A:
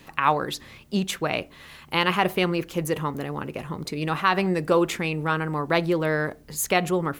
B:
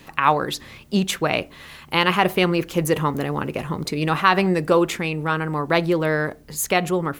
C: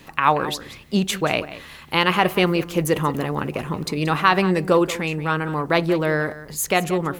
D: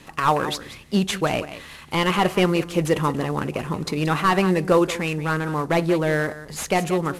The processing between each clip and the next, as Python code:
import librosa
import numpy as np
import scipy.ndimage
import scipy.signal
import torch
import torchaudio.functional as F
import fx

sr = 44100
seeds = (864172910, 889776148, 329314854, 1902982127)

y1 = fx.rider(x, sr, range_db=10, speed_s=2.0)
y1 = y1 * 10.0 ** (3.0 / 20.0)
y2 = y1 + 10.0 ** (-15.0 / 20.0) * np.pad(y1, (int(180 * sr / 1000.0), 0))[:len(y1)]
y3 = fx.cvsd(y2, sr, bps=64000)